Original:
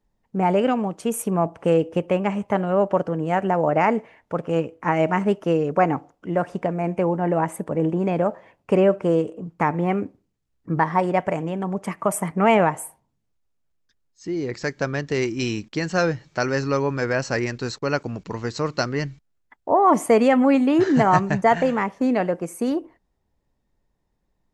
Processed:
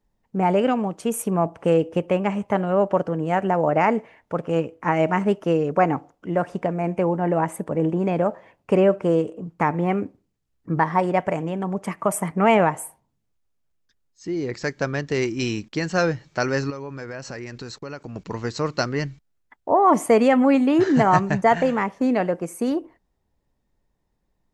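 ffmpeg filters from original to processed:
ffmpeg -i in.wav -filter_complex "[0:a]asettb=1/sr,asplit=3[link_01][link_02][link_03];[link_01]atrim=end=16.704[link_04];[link_02]atrim=start=16.7:end=18.16,asetpts=PTS-STARTPTS,afade=type=in:duration=0.004:curve=qsin,afade=type=out:start_time=1.456:duration=0.004:curve=qsin,acompressor=threshold=-32dB:ratio=4:attack=3.2:release=140:knee=1:detection=peak[link_05];[link_03]atrim=start=18.156[link_06];[link_04][link_05]acrossfade=duration=0.004:curve1=hsin:curve2=qsin[link_07];[link_07][link_06]acrossfade=duration=0.004:curve1=qsin:curve2=hsin" out.wav

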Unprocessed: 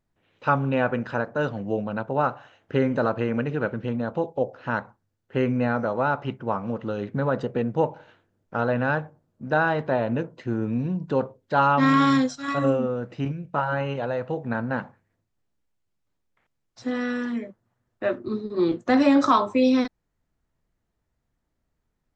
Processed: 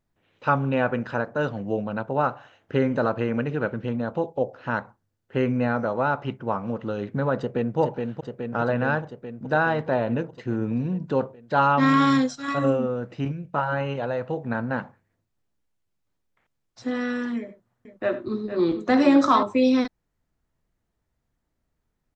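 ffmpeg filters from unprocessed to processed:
ffmpeg -i in.wav -filter_complex "[0:a]asplit=2[link_01][link_02];[link_02]afade=type=in:start_time=7.38:duration=0.01,afade=type=out:start_time=7.78:duration=0.01,aecho=0:1:420|840|1260|1680|2100|2520|2940|3360|3780|4200|4620|5040:0.630957|0.473218|0.354914|0.266185|0.199639|0.149729|0.112297|0.0842226|0.063167|0.0473752|0.0355314|0.0266486[link_03];[link_01][link_03]amix=inputs=2:normalize=0,asettb=1/sr,asplit=3[link_04][link_05][link_06];[link_04]atrim=end=17.394[link_07];[link_05]atrim=start=17.39:end=19.43,asetpts=PTS-STARTPTS,afade=type=in:duration=0.004:curve=qsin,afade=type=out:start_time=2.036:duration=0.004:curve=qsin,aecho=1:1:76|94|460:0.168|0.119|0.282,atrim=end_sample=89964[link_08];[link_06]atrim=start=19.426[link_09];[link_07][link_08]acrossfade=duration=0.004:curve1=hsin:curve2=qsin[link_10];[link_10][link_09]acrossfade=duration=0.004:curve1=qsin:curve2=hsin" out.wav

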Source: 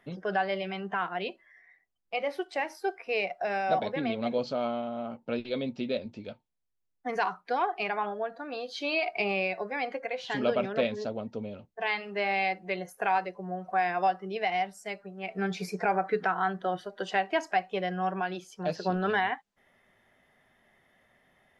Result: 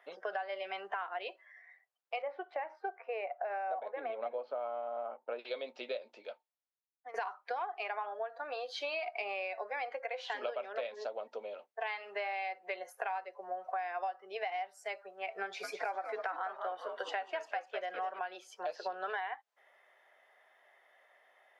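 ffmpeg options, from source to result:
ffmpeg -i in.wav -filter_complex "[0:a]asettb=1/sr,asplit=3[link_01][link_02][link_03];[link_01]atrim=end=2.224[link_04];[link_02]atrim=start=2.22:end=5.39,asetpts=PTS-STARTPTS,afade=type=in:duration=0.004:curve=qsin,afade=type=out:start_time=3.166:duration=0.004:curve=qsin,lowpass=1600[link_05];[link_03]atrim=start=5.386[link_06];[link_04][link_05]acrossfade=duration=0.004:curve1=hsin:curve2=qsin[link_07];[link_07][link_06]acrossfade=duration=0.004:curve1=qsin:curve2=hsin,asettb=1/sr,asplit=3[link_08][link_09][link_10];[link_08]atrim=end=15.434[link_11];[link_09]atrim=start=15.43:end=18.19,asetpts=PTS-STARTPTS,afade=type=in:duration=0.004:curve=qsin,afade=type=out:start_time=2.756:duration=0.004:curve=qsin,asplit=6[link_12][link_13][link_14][link_15][link_16][link_17];[link_13]adelay=203,afreqshift=-120,volume=-9dB[link_18];[link_14]adelay=406,afreqshift=-240,volume=-15.4dB[link_19];[link_15]adelay=609,afreqshift=-360,volume=-21.8dB[link_20];[link_16]adelay=812,afreqshift=-480,volume=-28.1dB[link_21];[link_17]adelay=1015,afreqshift=-600,volume=-34.5dB[link_22];[link_12][link_18][link_19][link_20][link_21][link_22]amix=inputs=6:normalize=0,atrim=end_sample=121716[link_23];[link_10]atrim=start=18.186[link_24];[link_11][link_23]acrossfade=duration=0.004:curve1=hsin:curve2=qsin[link_25];[link_25][link_24]acrossfade=duration=0.004:curve1=qsin:curve2=hsin,asplit=2[link_26][link_27];[link_26]atrim=end=7.14,asetpts=PTS-STARTPTS,afade=type=out:start_time=6.01:duration=1.13:silence=0.141254[link_28];[link_27]atrim=start=7.14,asetpts=PTS-STARTPTS,afade=type=in:duration=0.004:curve=hsin:silence=0.141254[link_29];[link_28][link_29]concat=n=2:v=0:a=1,highpass=frequency=530:width=0.5412,highpass=frequency=530:width=1.3066,highshelf=frequency=3100:gain=-9,acompressor=threshold=-38dB:ratio=6,volume=3dB" out.wav

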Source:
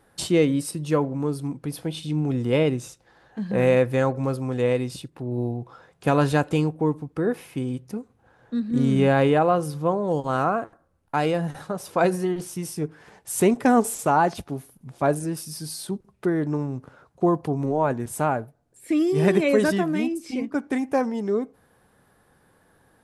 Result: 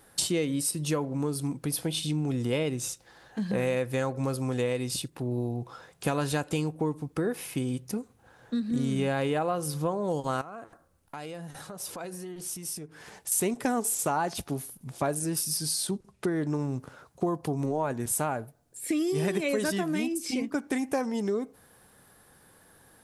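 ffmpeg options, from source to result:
ffmpeg -i in.wav -filter_complex "[0:a]asettb=1/sr,asplit=3[link_01][link_02][link_03];[link_01]atrim=end=10.414[link_04];[link_02]atrim=start=10.41:end=13.32,asetpts=PTS-STARTPTS,afade=type=in:duration=0.004:curve=qsin,afade=type=out:start_time=2.906:duration=0.004:curve=qsin,acompressor=threshold=-43dB:ratio=3:attack=3.2:release=140:knee=1:detection=peak[link_05];[link_03]atrim=start=13.316[link_06];[link_04][link_05]acrossfade=duration=0.004:curve1=hsin:curve2=qsin[link_07];[link_07][link_06]acrossfade=duration=0.004:curve1=qsin:curve2=hsin,asettb=1/sr,asplit=3[link_08][link_09][link_10];[link_08]atrim=end=15.574[link_11];[link_09]atrim=start=15.57:end=16.5,asetpts=PTS-STARTPTS,afade=type=in:duration=0.004:curve=qsin,afade=type=out:start_time=0.926:duration=0.004:curve=qsin,lowpass=9900[link_12];[link_10]atrim=start=16.496[link_13];[link_11][link_12]acrossfade=duration=0.004:curve1=hsin:curve2=qsin[link_14];[link_14][link_13]acrossfade=duration=0.004:curve1=qsin:curve2=hsin,highshelf=frequency=3500:gain=11.5,acompressor=threshold=-26dB:ratio=4" out.wav

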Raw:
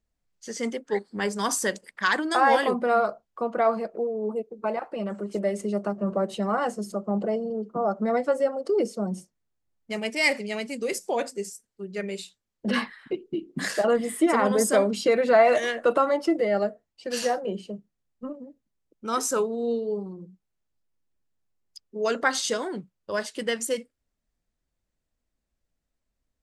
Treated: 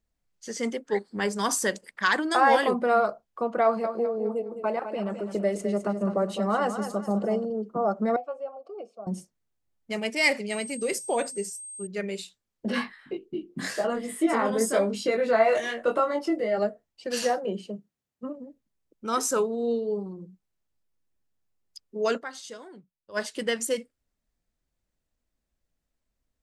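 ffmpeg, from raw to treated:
ffmpeg -i in.wav -filter_complex "[0:a]asettb=1/sr,asplit=3[link_01][link_02][link_03];[link_01]atrim=end=3.634[link_04];[link_02]atrim=start=3.63:end=7.45,asetpts=PTS-STARTPTS,afade=type=in:duration=0.004:curve=qsin,afade=type=out:start_time=3.816:duration=0.004:curve=qsin,aecho=1:1:207|414|621|828:0.335|0.124|0.0459|0.017,atrim=end_sample=168462[link_05];[link_03]atrim=start=7.446[link_06];[link_04][link_05]acrossfade=duration=0.004:curve1=hsin:curve2=qsin[link_07];[link_07][link_06]acrossfade=duration=0.004:curve1=qsin:curve2=hsin,asettb=1/sr,asplit=3[link_08][link_09][link_10];[link_08]atrim=end=8.164[link_11];[link_09]atrim=start=8.16:end=9.07,asetpts=PTS-STARTPTS,afade=type=in:duration=0.004:curve=qsin,afade=type=out:start_time=0.906:duration=0.004:curve=qsin,asplit=3[link_12][link_13][link_14];[link_12]bandpass=frequency=730:width_type=q:width=8,volume=0dB[link_15];[link_13]bandpass=frequency=1090:width_type=q:width=8,volume=-6dB[link_16];[link_14]bandpass=frequency=2440:width_type=q:width=8,volume=-9dB[link_17];[link_15][link_16][link_17]amix=inputs=3:normalize=0[link_18];[link_10]atrim=start=9.066[link_19];[link_11][link_18]acrossfade=duration=0.004:curve1=hsin:curve2=qsin[link_20];[link_20][link_19]acrossfade=duration=0.004:curve1=qsin:curve2=hsin,asettb=1/sr,asplit=3[link_21][link_22][link_23];[link_21]atrim=end=10.504[link_24];[link_22]atrim=start=10.5:end=11.87,asetpts=PTS-STARTPTS,afade=type=in:duration=0.004:curve=qsin,afade=type=out:start_time=1.366:duration=0.004:curve=qsin,aeval=exprs='val(0)+0.0126*sin(2*PI*8400*n/s)':channel_layout=same[link_25];[link_23]atrim=start=11.866[link_26];[link_24][link_25]acrossfade=duration=0.004:curve1=hsin:curve2=qsin[link_27];[link_27][link_26]acrossfade=duration=0.004:curve1=qsin:curve2=hsin,asplit=3[link_28][link_29][link_30];[link_28]afade=type=out:start_time=12.67:duration=0.02[link_31];[link_29]flanger=delay=20:depth=2.6:speed=1,afade=type=in:start_time=12.67:duration=0.02,afade=type=out:start_time=16.57:duration=0.02[link_32];[link_30]afade=type=in:start_time=16.57:duration=0.02[link_33];[link_31][link_32][link_33]amix=inputs=3:normalize=0,asettb=1/sr,asplit=3[link_34][link_35][link_36];[link_34]atrim=end=17.304[link_37];[link_35]atrim=start=17.3:end=18.38,asetpts=PTS-STARTPTS,afade=type=in:duration=0.004:curve=qsin,afade=type=out:start_time=1.076:duration=0.004:curve=qsin,highpass=94[link_38];[link_36]atrim=start=18.376[link_39];[link_37][link_38]acrossfade=duration=0.004:curve1=hsin:curve2=qsin[link_40];[link_40][link_39]acrossfade=duration=0.004:curve1=qsin:curve2=hsin,asplit=3[link_41][link_42][link_43];[link_41]atrim=end=22.3,asetpts=PTS-STARTPTS,afade=type=out:start_time=22.17:duration=0.13:curve=exp:silence=0.188365[link_44];[link_42]atrim=start=22.3:end=23.04,asetpts=PTS-STARTPTS,volume=-14.5dB[link_45];[link_43]atrim=start=23.04,asetpts=PTS-STARTPTS,afade=type=in:duration=0.13:curve=exp:silence=0.188365[link_46];[link_44][link_45][link_46]concat=n=3:v=0:a=1" out.wav

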